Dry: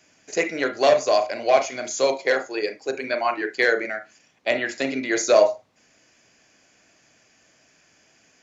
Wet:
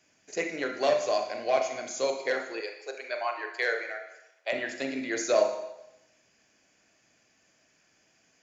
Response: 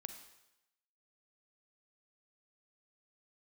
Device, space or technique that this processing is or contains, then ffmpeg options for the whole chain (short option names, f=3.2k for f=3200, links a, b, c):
bathroom: -filter_complex "[1:a]atrim=start_sample=2205[a];[0:a][a]afir=irnorm=-1:irlink=0,asettb=1/sr,asplit=3[b][c][d];[b]atrim=end=2.604[e];[c]atrim=start=2.6:end=4.53,asetpts=PTS-STARTPTS,afade=t=in:d=0.004:c=qsin,afade=t=out:st=1.926:d=0.004:c=qsin,highpass=f=460:w=0.5412,highpass=f=460:w=1.3066[f];[d]atrim=start=4.526[g];[e][f]acrossfade=d=0.004:c1=hsin:c2=qsin[h];[h][g]acrossfade=d=0.004:c1=qsin:c2=hsin,volume=-3.5dB"